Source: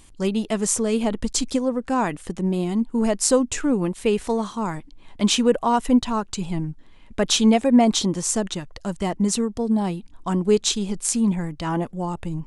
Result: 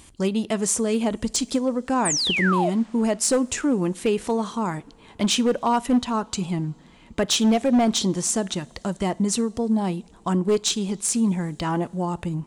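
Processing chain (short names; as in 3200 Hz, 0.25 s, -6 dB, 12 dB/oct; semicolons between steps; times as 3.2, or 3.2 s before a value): HPF 50 Hz 12 dB/oct; in parallel at +2.5 dB: compressor 5:1, threshold -30 dBFS, peak gain reduction 17 dB; on the sum: hard clip -10.5 dBFS, distortion -19 dB; painted sound fall, 2.05–2.7, 570–9200 Hz -20 dBFS; two-slope reverb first 0.37 s, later 4.5 s, from -19 dB, DRR 18.5 dB; gain -3.5 dB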